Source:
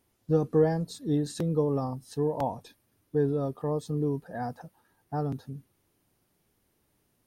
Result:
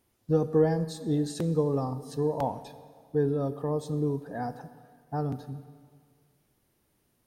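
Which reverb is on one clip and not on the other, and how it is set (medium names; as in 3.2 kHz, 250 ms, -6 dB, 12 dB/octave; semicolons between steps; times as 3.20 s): plate-style reverb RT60 1.9 s, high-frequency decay 0.9×, DRR 12 dB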